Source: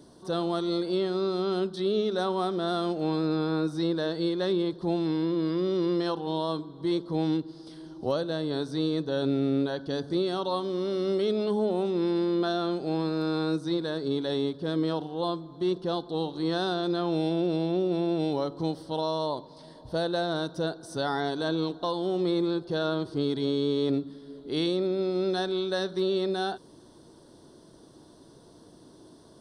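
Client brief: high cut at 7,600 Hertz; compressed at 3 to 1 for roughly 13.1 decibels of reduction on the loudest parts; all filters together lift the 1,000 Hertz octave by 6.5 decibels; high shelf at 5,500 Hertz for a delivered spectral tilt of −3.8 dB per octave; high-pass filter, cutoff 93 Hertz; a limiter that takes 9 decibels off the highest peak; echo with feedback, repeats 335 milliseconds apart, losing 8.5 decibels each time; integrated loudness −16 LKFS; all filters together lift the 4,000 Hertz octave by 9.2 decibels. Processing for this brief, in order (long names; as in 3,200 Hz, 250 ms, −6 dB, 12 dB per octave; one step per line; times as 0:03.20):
high-pass filter 93 Hz
low-pass filter 7,600 Hz
parametric band 1,000 Hz +8 dB
parametric band 4,000 Hz +7.5 dB
high-shelf EQ 5,500 Hz +7.5 dB
downward compressor 3 to 1, threshold −39 dBFS
brickwall limiter −32 dBFS
repeating echo 335 ms, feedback 38%, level −8.5 dB
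level +25.5 dB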